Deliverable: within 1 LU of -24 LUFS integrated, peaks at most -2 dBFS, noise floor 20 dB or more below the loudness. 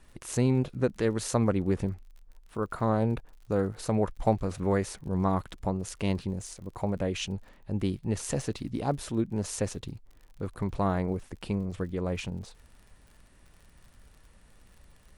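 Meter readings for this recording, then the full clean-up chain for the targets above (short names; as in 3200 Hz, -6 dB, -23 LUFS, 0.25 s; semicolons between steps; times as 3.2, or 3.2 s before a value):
ticks 54/s; loudness -31.0 LUFS; peak -11.5 dBFS; loudness target -24.0 LUFS
-> de-click; gain +7 dB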